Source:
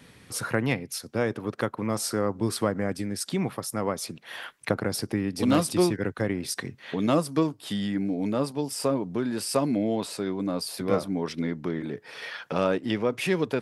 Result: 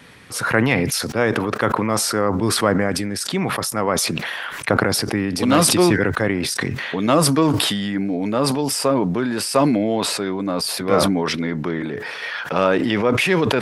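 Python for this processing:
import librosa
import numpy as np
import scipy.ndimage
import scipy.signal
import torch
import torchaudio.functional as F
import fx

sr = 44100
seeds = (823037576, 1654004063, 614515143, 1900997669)

y = fx.peak_eq(x, sr, hz=1500.0, db=6.5, octaves=2.8)
y = fx.sustainer(y, sr, db_per_s=24.0)
y = y * librosa.db_to_amplitude(3.5)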